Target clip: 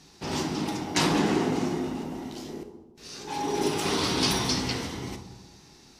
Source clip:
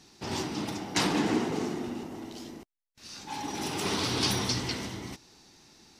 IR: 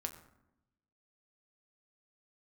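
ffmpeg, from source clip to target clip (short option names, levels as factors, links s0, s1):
-filter_complex "[0:a]asettb=1/sr,asplit=3[s0][s1][s2];[s0]atrim=end=2.494[s3];[s1]atrim=start=2.49:end=3.7,asetpts=PTS-STARTPTS,afade=t=in:d=0.004:c=qsin,afade=t=out:st=1.206:d=0.004:c=qsin,equalizer=f=420:w=3:g=11.5[s4];[s2]atrim=start=3.696[s5];[s3][s4]acrossfade=d=0.004:c1=hsin:c2=qsin[s6];[s6][s5]acrossfade=d=0.004:c1=qsin:c2=hsin[s7];[1:a]atrim=start_sample=2205,asetrate=28665,aresample=44100[s8];[s7][s8]afir=irnorm=-1:irlink=0,volume=1.26"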